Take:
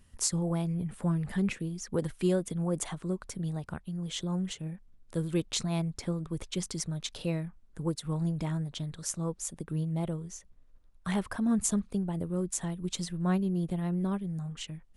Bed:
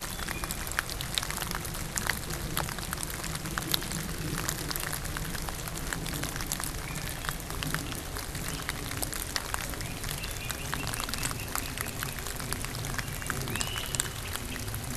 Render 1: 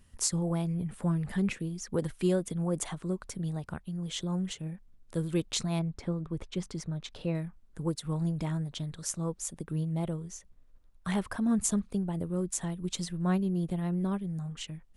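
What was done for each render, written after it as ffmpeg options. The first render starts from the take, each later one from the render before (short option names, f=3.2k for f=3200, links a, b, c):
-filter_complex "[0:a]asettb=1/sr,asplit=3[a][b][c];[a]atrim=end=5.794[d];[b]atrim=start=5.79:end=7.35,asetpts=PTS-STARTPTS,afade=t=in:d=0.004:c=qsin,afade=t=out:st=1.556:d=0.004:c=qsin,lowpass=f=2.1k:p=1[e];[c]atrim=start=7.346[f];[d][e]acrossfade=d=0.004:c1=hsin:c2=qsin[g];[g][f]acrossfade=d=0.004:c1=qsin:c2=hsin"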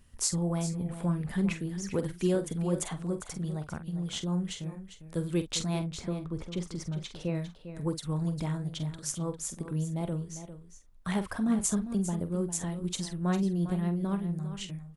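-filter_complex "[0:a]asplit=2[a][b];[b]adelay=46,volume=-11dB[c];[a][c]amix=inputs=2:normalize=0,asplit=2[d][e];[e]aecho=0:1:401:0.266[f];[d][f]amix=inputs=2:normalize=0"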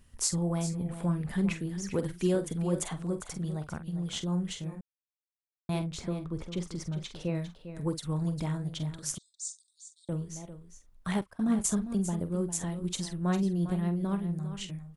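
-filter_complex "[0:a]asettb=1/sr,asplit=3[a][b][c];[a]atrim=end=9.184[d];[b]atrim=start=9.18:end=10.09,asetpts=PTS-STARTPTS,afade=t=in:d=0.004:c=qsin,afade=t=out:st=0.906:d=0.004:c=qsin,asuperpass=centerf=5900:order=20:qfactor=1.1[e];[c]atrim=start=10.086[f];[d][e]acrossfade=d=0.004:c1=hsin:c2=qsin[g];[g][f]acrossfade=d=0.004:c1=qsin:c2=hsin,asettb=1/sr,asplit=3[h][i][j];[h]atrim=end=11.214[k];[i]atrim=start=11.21:end=11.68,asetpts=PTS-STARTPTS,afade=t=in:d=0.004:c=qsin,afade=t=out:st=0.466:d=0.004:c=qsin,agate=range=-22dB:threshold=-35dB:ratio=16:release=100:detection=peak[l];[j]atrim=start=11.676[m];[k][l]acrossfade=d=0.004:c1=hsin:c2=qsin[n];[n][m]acrossfade=d=0.004:c1=qsin:c2=hsin,asplit=3[o][p][q];[o]atrim=end=4.81,asetpts=PTS-STARTPTS,afade=t=out:st=4.806:d=0.004:c=hsin[r];[p]atrim=start=4.81:end=5.69,asetpts=PTS-STARTPTS,volume=0[s];[q]atrim=start=5.69,asetpts=PTS-STARTPTS,afade=t=in:d=0.004:c=hsin[t];[r][s][t]concat=n=3:v=0:a=1"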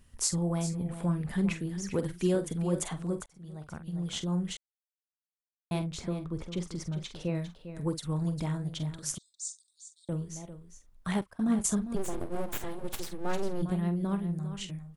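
-filter_complex "[0:a]asplit=3[a][b][c];[a]afade=t=out:st=11.95:d=0.02[d];[b]aeval=exprs='abs(val(0))':c=same,afade=t=in:st=11.95:d=0.02,afade=t=out:st=13.61:d=0.02[e];[c]afade=t=in:st=13.61:d=0.02[f];[d][e][f]amix=inputs=3:normalize=0,asplit=4[g][h][i][j];[g]atrim=end=3.26,asetpts=PTS-STARTPTS,afade=t=out:st=3.256:d=0.004:c=hsin[k];[h]atrim=start=3.26:end=4.57,asetpts=PTS-STARTPTS,afade=t=in:d=0.76,afade=t=out:st=1.306:d=0.004:c=hsin[l];[i]atrim=start=4.57:end=5.71,asetpts=PTS-STARTPTS,volume=0[m];[j]atrim=start=5.71,asetpts=PTS-STARTPTS,afade=t=in:d=0.004:c=hsin[n];[k][l][m][n]concat=n=4:v=0:a=1"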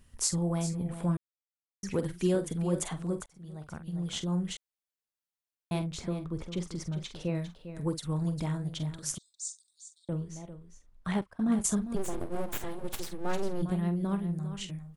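-filter_complex "[0:a]asettb=1/sr,asplit=3[a][b][c];[a]atrim=end=9.984[d];[b]atrim=start=9.98:end=11.52,asetpts=PTS-STARTPTS,afade=t=in:d=0.004:c=qsin,afade=t=out:st=1.536:d=0.004:c=qsin,highshelf=f=6.8k:g=-11[e];[c]atrim=start=11.516[f];[d][e]acrossfade=d=0.004:c1=hsin:c2=qsin[g];[g][f]acrossfade=d=0.004:c1=qsin:c2=hsin,asplit=3[h][i][j];[h]atrim=end=1.17,asetpts=PTS-STARTPTS,afade=t=out:st=1.166:d=0.004:c=hsin[k];[i]atrim=start=1.17:end=1.83,asetpts=PTS-STARTPTS,volume=0[l];[j]atrim=start=1.83,asetpts=PTS-STARTPTS,afade=t=in:d=0.004:c=hsin[m];[k][l][m]concat=n=3:v=0:a=1"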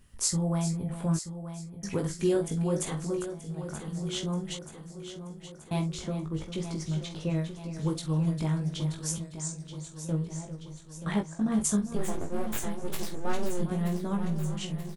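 -filter_complex "[0:a]asplit=2[a][b];[b]adelay=19,volume=-4dB[c];[a][c]amix=inputs=2:normalize=0,asplit=2[d][e];[e]aecho=0:1:930|1860|2790|3720|4650|5580|6510:0.282|0.166|0.0981|0.0579|0.0342|0.0201|0.0119[f];[d][f]amix=inputs=2:normalize=0"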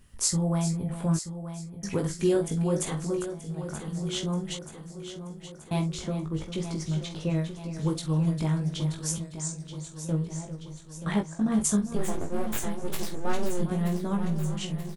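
-af "volume=2dB"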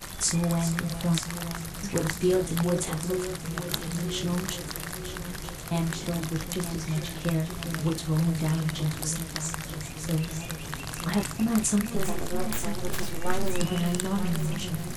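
-filter_complex "[1:a]volume=-3dB[a];[0:a][a]amix=inputs=2:normalize=0"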